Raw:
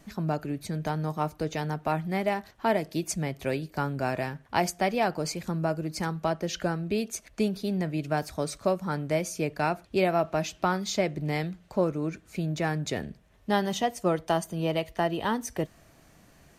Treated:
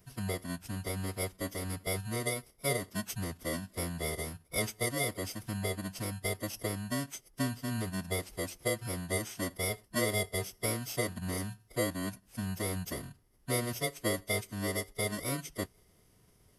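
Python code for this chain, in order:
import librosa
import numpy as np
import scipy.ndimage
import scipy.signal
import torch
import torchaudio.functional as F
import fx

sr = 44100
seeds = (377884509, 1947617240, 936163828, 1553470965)

y = fx.bit_reversed(x, sr, seeds[0], block=32)
y = fx.pitch_keep_formants(y, sr, semitones=-8.5)
y = y * librosa.db_to_amplitude(-6.0)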